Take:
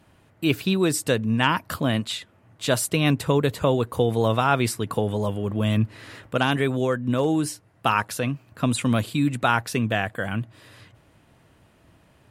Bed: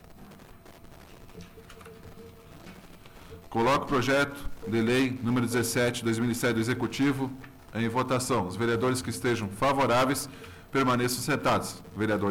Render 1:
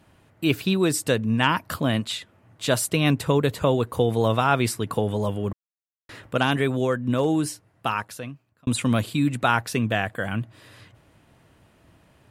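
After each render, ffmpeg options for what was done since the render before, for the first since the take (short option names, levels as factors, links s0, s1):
-filter_complex "[0:a]asplit=4[s0][s1][s2][s3];[s0]atrim=end=5.53,asetpts=PTS-STARTPTS,afade=t=out:st=5.526:d=0.004:c=hsin[s4];[s1]atrim=start=5.53:end=6.09,asetpts=PTS-STARTPTS,volume=0[s5];[s2]atrim=start=6.09:end=8.67,asetpts=PTS-STARTPTS,afade=t=in:d=0.004:c=hsin,afade=t=out:st=1.32:d=1.26[s6];[s3]atrim=start=8.67,asetpts=PTS-STARTPTS,afade=t=in:d=0.004:c=hsin[s7];[s4][s5][s6][s7]concat=n=4:v=0:a=1"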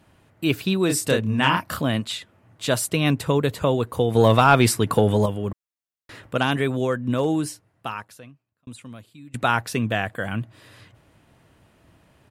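-filter_complex "[0:a]asplit=3[s0][s1][s2];[s0]afade=t=out:st=0.88:d=0.02[s3];[s1]asplit=2[s4][s5];[s5]adelay=29,volume=0.708[s6];[s4][s6]amix=inputs=2:normalize=0,afade=t=in:st=0.88:d=0.02,afade=t=out:st=1.81:d=0.02[s7];[s2]afade=t=in:st=1.81:d=0.02[s8];[s3][s7][s8]amix=inputs=3:normalize=0,asettb=1/sr,asplit=3[s9][s10][s11];[s9]atrim=end=4.154[s12];[s10]atrim=start=4.15:end=5.26,asetpts=PTS-STARTPTS,afade=t=in:d=0.004:c=qsin,afade=t=out:st=1.106:d=0.004:c=qsin,acontrast=65[s13];[s11]atrim=start=5.256[s14];[s12][s13]acrossfade=d=0.004:c1=hsin:c2=qsin[s15];[s15][s14]acrossfade=d=0.004:c1=qsin:c2=hsin,asplit=2[s16][s17];[s16]atrim=end=9.34,asetpts=PTS-STARTPTS,afade=t=out:st=7.31:d=2.03:c=qua:silence=0.0749894[s18];[s17]atrim=start=9.34,asetpts=PTS-STARTPTS,afade=t=in:d=0.004:c=hsin:silence=0.0749894[s19];[s18][s19]concat=n=2:v=0:a=1"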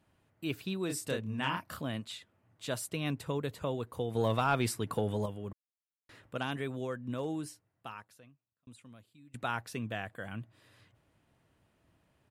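-af "volume=0.2"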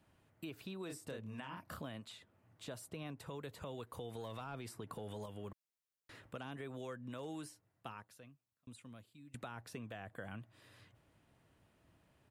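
-filter_complex "[0:a]alimiter=level_in=1.78:limit=0.0631:level=0:latency=1:release=125,volume=0.562,acrossover=split=520|1300[s0][s1][s2];[s0]acompressor=threshold=0.00447:ratio=4[s3];[s1]acompressor=threshold=0.00316:ratio=4[s4];[s2]acompressor=threshold=0.002:ratio=4[s5];[s3][s4][s5]amix=inputs=3:normalize=0"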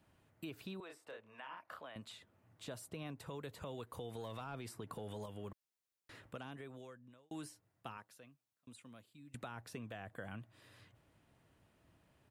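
-filter_complex "[0:a]asettb=1/sr,asplit=3[s0][s1][s2];[s0]atrim=end=0.804[s3];[s1]atrim=start=0.8:end=1.96,asetpts=PTS-STARTPTS,afade=t=in:d=0.004:c=qsin,afade=t=out:st=1.156:d=0.004:c=qsin,acrossover=split=450 3400:gain=0.0708 1 0.2[s4][s5][s6];[s4][s5][s6]amix=inputs=3:normalize=0[s7];[s2]atrim=start=1.956[s8];[s3][s7]acrossfade=d=0.004:c1=hsin:c2=qsin[s9];[s9][s8]acrossfade=d=0.004:c1=qsin:c2=hsin,asettb=1/sr,asplit=3[s10][s11][s12];[s10]atrim=end=7.974[s13];[s11]atrim=start=7.97:end=9.14,asetpts=PTS-STARTPTS,afade=t=in:d=0.004:c=qsin,afade=t=out:st=1.166:d=0.004:c=qsin,highpass=f=200:p=1[s14];[s12]atrim=start=9.136[s15];[s13][s14]acrossfade=d=0.004:c1=hsin:c2=qsin[s16];[s16][s15]acrossfade=d=0.004:c1=qsin:c2=hsin,asplit=2[s17][s18];[s17]atrim=end=7.31,asetpts=PTS-STARTPTS,afade=t=out:st=6.24:d=1.07[s19];[s18]atrim=start=7.31,asetpts=PTS-STARTPTS,afade=t=in:d=0.004:c=hsin[s20];[s19][s20]concat=n=2:v=0:a=1"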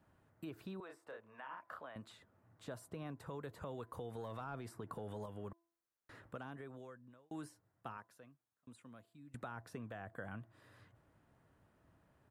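-af "highshelf=f=2000:t=q:w=1.5:g=-6,bandreject=f=336.6:t=h:w=4,bandreject=f=673.2:t=h:w=4,bandreject=f=1009.8:t=h:w=4"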